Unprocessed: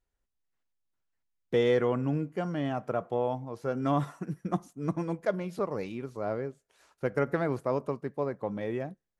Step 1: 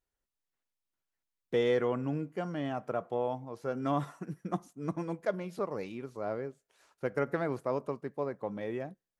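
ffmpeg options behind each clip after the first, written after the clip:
ffmpeg -i in.wav -af "lowshelf=frequency=120:gain=-7,volume=-2.5dB" out.wav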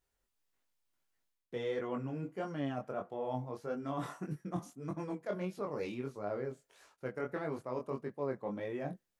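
ffmpeg -i in.wav -af "areverse,acompressor=threshold=-41dB:ratio=4,areverse,flanger=delay=19.5:depth=4.8:speed=1.6,volume=8dB" out.wav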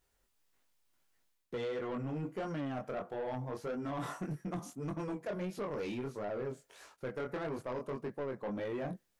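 ffmpeg -i in.wav -af "acompressor=threshold=-37dB:ratio=6,asoftclip=type=tanh:threshold=-39dB,volume=6.5dB" out.wav

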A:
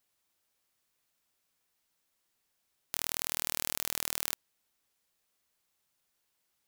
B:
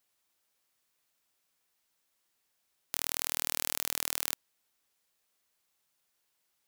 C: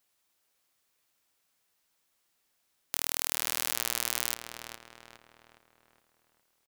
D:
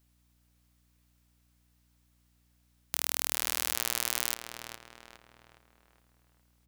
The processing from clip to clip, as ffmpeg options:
ffmpeg -i in.wav -af "lowshelf=frequency=240:gain=-5,volume=1dB" out.wav
ffmpeg -i in.wav -filter_complex "[0:a]asplit=2[link_01][link_02];[link_02]adelay=413,lowpass=frequency=3200:poles=1,volume=-6dB,asplit=2[link_03][link_04];[link_04]adelay=413,lowpass=frequency=3200:poles=1,volume=0.48,asplit=2[link_05][link_06];[link_06]adelay=413,lowpass=frequency=3200:poles=1,volume=0.48,asplit=2[link_07][link_08];[link_08]adelay=413,lowpass=frequency=3200:poles=1,volume=0.48,asplit=2[link_09][link_10];[link_10]adelay=413,lowpass=frequency=3200:poles=1,volume=0.48,asplit=2[link_11][link_12];[link_12]adelay=413,lowpass=frequency=3200:poles=1,volume=0.48[link_13];[link_01][link_03][link_05][link_07][link_09][link_11][link_13]amix=inputs=7:normalize=0,volume=2dB" out.wav
ffmpeg -i in.wav -af "aeval=exprs='val(0)+0.000398*(sin(2*PI*60*n/s)+sin(2*PI*2*60*n/s)/2+sin(2*PI*3*60*n/s)/3+sin(2*PI*4*60*n/s)/4+sin(2*PI*5*60*n/s)/5)':channel_layout=same" out.wav

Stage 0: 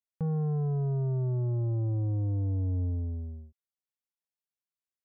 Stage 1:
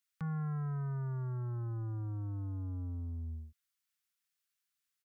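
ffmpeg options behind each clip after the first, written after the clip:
ffmpeg -i in.wav -filter_complex "[0:a]acrossover=split=180[link_01][link_02];[link_01]alimiter=level_in=13dB:limit=-24dB:level=0:latency=1,volume=-13dB[link_03];[link_03][link_02]amix=inputs=2:normalize=0,asoftclip=type=tanh:threshold=-29.5dB,firequalizer=gain_entry='entry(150,0);entry(490,-15);entry(1300,9)':delay=0.05:min_phase=1" out.wav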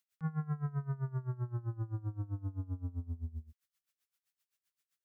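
ffmpeg -i in.wav -af "aeval=exprs='val(0)*pow(10,-20*(0.5-0.5*cos(2*PI*7.7*n/s))/20)':channel_layout=same,volume=5dB" out.wav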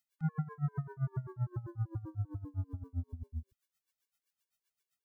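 ffmpeg -i in.wav -af "afftfilt=real='re*gt(sin(2*PI*5.1*pts/sr)*(1-2*mod(floor(b*sr/1024/300),2)),0)':imag='im*gt(sin(2*PI*5.1*pts/sr)*(1-2*mod(floor(b*sr/1024/300),2)),0)':win_size=1024:overlap=0.75,volume=3dB" out.wav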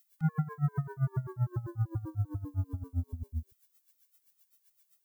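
ffmpeg -i in.wav -af "aemphasis=mode=production:type=50kf,volume=4.5dB" out.wav

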